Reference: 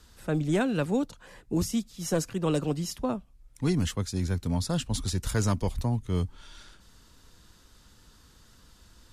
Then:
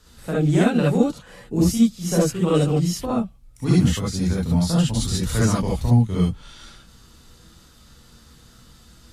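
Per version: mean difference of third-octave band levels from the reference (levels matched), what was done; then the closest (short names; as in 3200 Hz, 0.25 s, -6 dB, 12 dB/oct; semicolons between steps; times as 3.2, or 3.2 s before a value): 5.5 dB: non-linear reverb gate 90 ms rising, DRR -5.5 dB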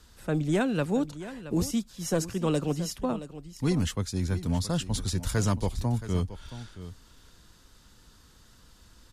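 2.0 dB: echo 0.673 s -14 dB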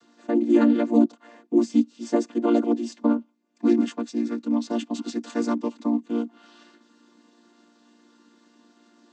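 10.5 dB: chord vocoder major triad, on A#3; gain +7 dB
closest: second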